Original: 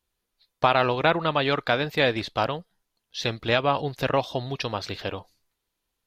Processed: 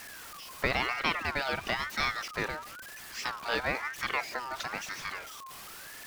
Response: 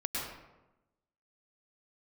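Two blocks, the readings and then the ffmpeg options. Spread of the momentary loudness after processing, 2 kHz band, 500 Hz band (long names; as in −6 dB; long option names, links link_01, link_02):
14 LU, −2.5 dB, −13.5 dB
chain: -af "aeval=exprs='val(0)+0.5*0.0335*sgn(val(0))':channel_layout=same,aeval=exprs='val(0)*sin(2*PI*1400*n/s+1400*0.25/1*sin(2*PI*1*n/s))':channel_layout=same,volume=-7dB"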